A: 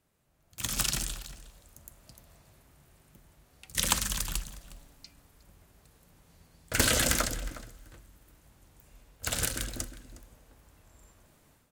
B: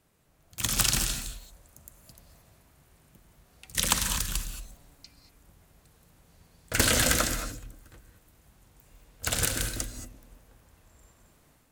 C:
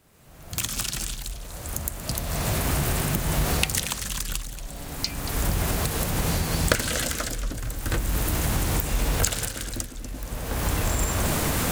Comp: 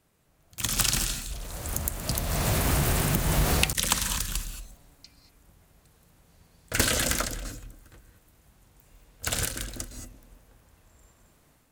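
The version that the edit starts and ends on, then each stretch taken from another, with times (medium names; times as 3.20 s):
B
1.31–3.73 s: from C
6.84–7.45 s: from A
9.43–9.91 s: from A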